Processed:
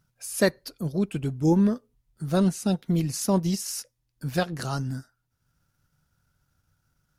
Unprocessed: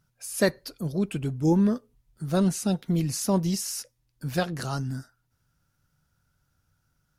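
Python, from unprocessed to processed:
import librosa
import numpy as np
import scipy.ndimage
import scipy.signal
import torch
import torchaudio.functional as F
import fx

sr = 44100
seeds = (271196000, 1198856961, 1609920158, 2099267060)

y = fx.transient(x, sr, attack_db=0, sustain_db=-5)
y = F.gain(torch.from_numpy(y), 1.0).numpy()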